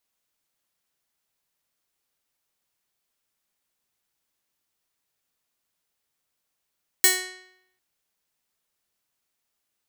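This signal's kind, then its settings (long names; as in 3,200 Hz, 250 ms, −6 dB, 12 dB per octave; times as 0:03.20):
Karplus-Strong string F#4, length 0.75 s, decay 0.77 s, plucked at 0.3, bright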